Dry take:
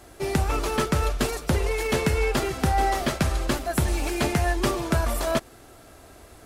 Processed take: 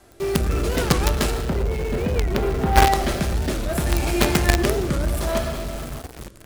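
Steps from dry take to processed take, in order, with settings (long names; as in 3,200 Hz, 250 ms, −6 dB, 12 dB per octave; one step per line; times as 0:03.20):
0:01.30–0:02.89: head-to-tape spacing loss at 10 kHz 37 dB
convolution reverb RT60 1.5 s, pre-delay 5 ms, DRR 2.5 dB
rotating-speaker cabinet horn 0.65 Hz
in parallel at −4.5 dB: log-companded quantiser 2 bits
on the sum: wow of a warped record 45 rpm, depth 250 cents
level −1 dB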